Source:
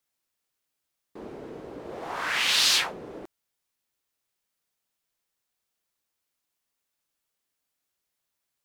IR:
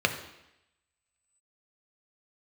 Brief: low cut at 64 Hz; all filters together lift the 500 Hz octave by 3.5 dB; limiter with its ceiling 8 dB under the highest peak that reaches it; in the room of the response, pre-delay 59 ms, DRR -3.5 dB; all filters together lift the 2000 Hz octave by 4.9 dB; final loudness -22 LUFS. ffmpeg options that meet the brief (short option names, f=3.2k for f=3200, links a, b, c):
-filter_complex "[0:a]highpass=64,equalizer=f=500:t=o:g=4,equalizer=f=2k:t=o:g=6,alimiter=limit=-15dB:level=0:latency=1,asplit=2[a][b];[1:a]atrim=start_sample=2205,adelay=59[c];[b][c]afir=irnorm=-1:irlink=0,volume=-9.5dB[d];[a][d]amix=inputs=2:normalize=0,volume=-0.5dB"